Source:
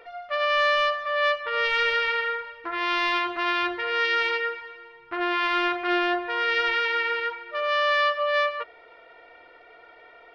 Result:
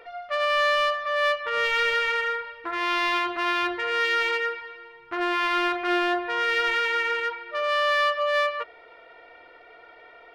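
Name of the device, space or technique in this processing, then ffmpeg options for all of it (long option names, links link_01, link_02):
parallel distortion: -filter_complex "[0:a]asplit=2[link_01][link_02];[link_02]asoftclip=type=hard:threshold=-25dB,volume=-9.5dB[link_03];[link_01][link_03]amix=inputs=2:normalize=0,volume=-1.5dB"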